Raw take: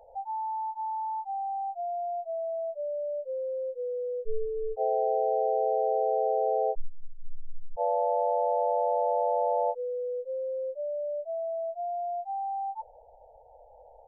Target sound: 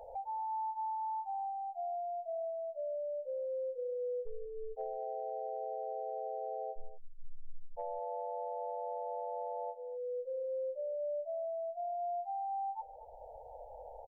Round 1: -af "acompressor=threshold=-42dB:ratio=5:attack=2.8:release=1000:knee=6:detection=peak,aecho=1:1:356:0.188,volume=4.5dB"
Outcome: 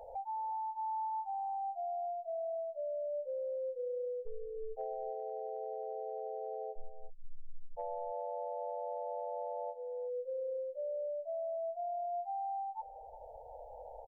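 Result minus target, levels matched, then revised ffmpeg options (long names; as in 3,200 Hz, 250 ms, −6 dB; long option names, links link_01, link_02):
echo 123 ms late
-af "acompressor=threshold=-42dB:ratio=5:attack=2.8:release=1000:knee=6:detection=peak,aecho=1:1:233:0.188,volume=4.5dB"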